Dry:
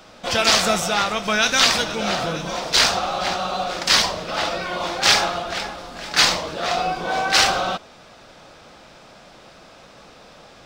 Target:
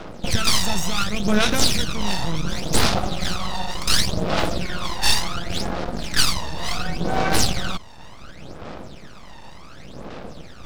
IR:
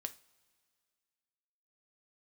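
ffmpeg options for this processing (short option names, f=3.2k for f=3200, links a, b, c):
-filter_complex "[0:a]acrossover=split=520[a][b];[a]acontrast=72[c];[c][b]amix=inputs=2:normalize=0,highshelf=f=9k:g=-8.5,acrossover=split=200|3000[d][e][f];[e]acompressor=threshold=-34dB:ratio=2[g];[d][g][f]amix=inputs=3:normalize=0,aeval=exprs='max(val(0),0)':c=same,aphaser=in_gain=1:out_gain=1:delay=1.1:decay=0.67:speed=0.69:type=sinusoidal,asplit=2[h][i];[i]alimiter=limit=-7dB:level=0:latency=1:release=278,volume=1dB[j];[h][j]amix=inputs=2:normalize=0,volume=-3.5dB"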